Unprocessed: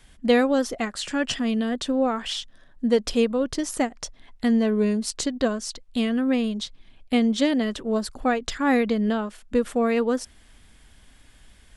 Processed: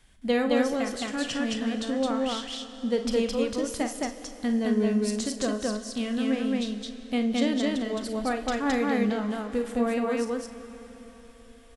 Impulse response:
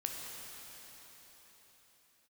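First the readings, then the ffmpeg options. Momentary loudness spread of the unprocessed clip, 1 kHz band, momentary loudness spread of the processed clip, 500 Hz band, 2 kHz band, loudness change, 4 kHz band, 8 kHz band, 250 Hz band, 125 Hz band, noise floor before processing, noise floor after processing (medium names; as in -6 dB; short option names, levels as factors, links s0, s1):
9 LU, -3.5 dB, 9 LU, -3.5 dB, -3.5 dB, -3.5 dB, -3.0 dB, -3.0 dB, -3.0 dB, no reading, -54 dBFS, -50 dBFS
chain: -filter_complex "[0:a]aecho=1:1:52.48|215.7:0.282|0.891,asplit=2[s0][s1];[1:a]atrim=start_sample=2205,adelay=38[s2];[s1][s2]afir=irnorm=-1:irlink=0,volume=0.299[s3];[s0][s3]amix=inputs=2:normalize=0,volume=0.473"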